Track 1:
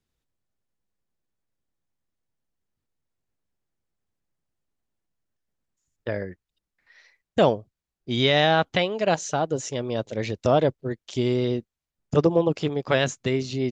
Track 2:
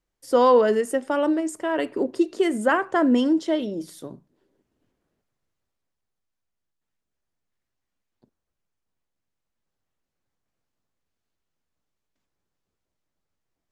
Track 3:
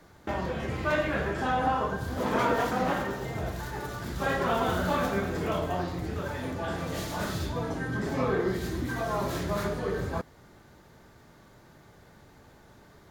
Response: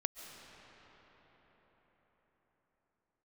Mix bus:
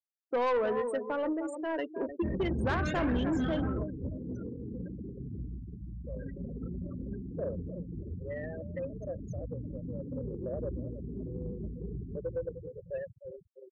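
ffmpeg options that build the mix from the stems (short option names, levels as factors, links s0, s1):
-filter_complex "[0:a]asplit=3[s0][s1][s2];[s0]bandpass=f=530:t=q:w=8,volume=1[s3];[s1]bandpass=f=1840:t=q:w=8,volume=0.501[s4];[s2]bandpass=f=2480:t=q:w=8,volume=0.355[s5];[s3][s4][s5]amix=inputs=3:normalize=0,volume=0.299,asplit=3[s6][s7][s8];[s7]volume=0.0841[s9];[s8]volume=0.266[s10];[1:a]lowshelf=f=370:g=-4.5,volume=0.473,asplit=3[s11][s12][s13];[s12]volume=0.316[s14];[2:a]lowshelf=f=68:g=6,flanger=delay=16:depth=7.4:speed=1.7,firequalizer=gain_entry='entry(250,0);entry(850,-25);entry(1300,-12);entry(6000,9)':delay=0.05:min_phase=1,adelay=1950,volume=1.41,asplit=3[s15][s16][s17];[s16]volume=0.447[s18];[s17]volume=0.126[s19];[s13]apad=whole_len=668453[s20];[s15][s20]sidechaingate=range=0.00316:threshold=0.00794:ratio=16:detection=peak[s21];[3:a]atrim=start_sample=2205[s22];[s9][s18]amix=inputs=2:normalize=0[s23];[s23][s22]afir=irnorm=-1:irlink=0[s24];[s10][s14][s19]amix=inputs=3:normalize=0,aecho=0:1:305|610|915|1220:1|0.27|0.0729|0.0197[s25];[s6][s11][s21][s24][s25]amix=inputs=5:normalize=0,afftfilt=real='re*gte(hypot(re,im),0.0251)':imag='im*gte(hypot(re,im),0.0251)':win_size=1024:overlap=0.75,asoftclip=type=tanh:threshold=0.0631"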